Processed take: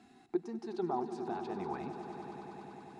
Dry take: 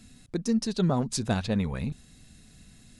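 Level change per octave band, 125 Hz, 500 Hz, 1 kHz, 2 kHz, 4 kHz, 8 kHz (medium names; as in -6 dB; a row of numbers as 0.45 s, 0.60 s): -20.5 dB, -4.5 dB, -0.5 dB, -11.5 dB, -21.0 dB, under -25 dB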